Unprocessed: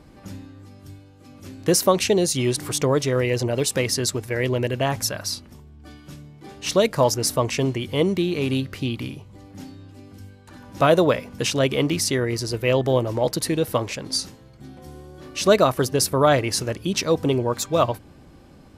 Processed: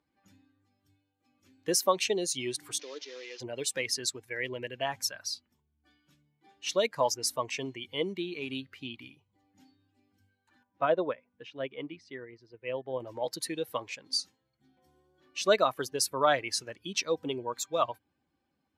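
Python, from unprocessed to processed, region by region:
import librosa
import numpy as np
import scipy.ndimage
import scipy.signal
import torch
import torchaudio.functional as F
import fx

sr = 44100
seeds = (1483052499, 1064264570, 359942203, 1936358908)

y = fx.chain(x, sr, fx.delta_mod(bps=32000, step_db=-20.0),
    fx.highpass(hz=310.0, slope=24),
    fx.peak_eq(hz=1100.0, db=-12.0, octaves=2.9), at=(2.79, 3.4))
y = fx.chain(y, sr, fx.lowpass(hz=4200.0, slope=12),
    fx.high_shelf(hz=2400.0, db=-7.5),
    fx.upward_expand(threshold_db=-27.0, expansion=1.5), at=(10.63, 13.0))
y = fx.bin_expand(y, sr, power=1.5)
y = fx.weighting(y, sr, curve='A')
y = y * 10.0 ** (-4.0 / 20.0)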